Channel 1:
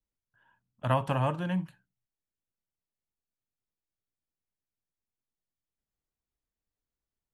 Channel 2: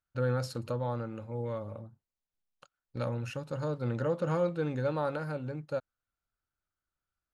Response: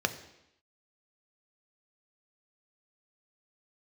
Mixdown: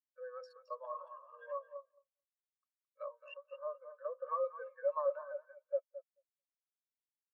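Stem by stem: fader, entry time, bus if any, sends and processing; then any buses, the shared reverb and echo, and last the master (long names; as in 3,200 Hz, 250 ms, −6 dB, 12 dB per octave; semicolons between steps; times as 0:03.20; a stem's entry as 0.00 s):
−5.0 dB, 0.00 s, no send, echo send −6 dB, compressor whose output falls as the input rises −35 dBFS, ratio −1
+1.5 dB, 0.00 s, no send, echo send −5.5 dB, adaptive Wiener filter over 9 samples; brickwall limiter −24.5 dBFS, peak gain reduction 5 dB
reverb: not used
echo: repeating echo 218 ms, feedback 27%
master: high-pass filter 770 Hz 24 dB per octave; comb filter 1.8 ms, depth 77%; every bin expanded away from the loudest bin 2.5 to 1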